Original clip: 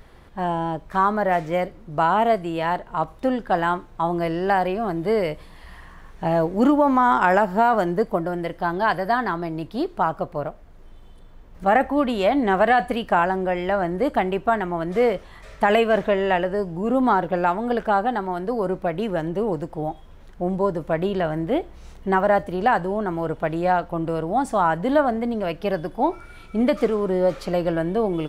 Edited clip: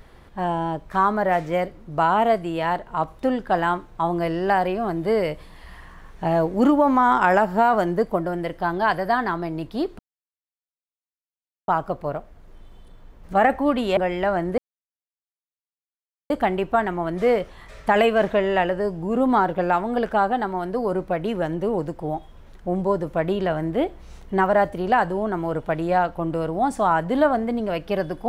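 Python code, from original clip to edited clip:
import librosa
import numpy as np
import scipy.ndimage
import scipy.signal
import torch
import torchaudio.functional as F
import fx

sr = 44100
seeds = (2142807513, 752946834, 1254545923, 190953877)

y = fx.edit(x, sr, fx.insert_silence(at_s=9.99, length_s=1.69),
    fx.cut(start_s=12.28, length_s=1.15),
    fx.insert_silence(at_s=14.04, length_s=1.72), tone=tone)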